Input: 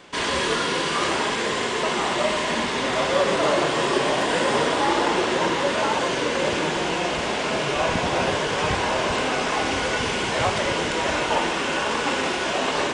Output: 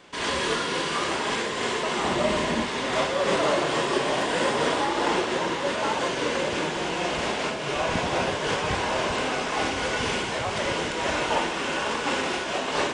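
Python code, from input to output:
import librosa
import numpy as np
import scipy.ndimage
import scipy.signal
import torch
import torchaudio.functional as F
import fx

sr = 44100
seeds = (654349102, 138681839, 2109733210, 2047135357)

y = fx.low_shelf(x, sr, hz=370.0, db=9.5, at=(2.04, 2.64))
y = fx.am_noise(y, sr, seeds[0], hz=5.7, depth_pct=60)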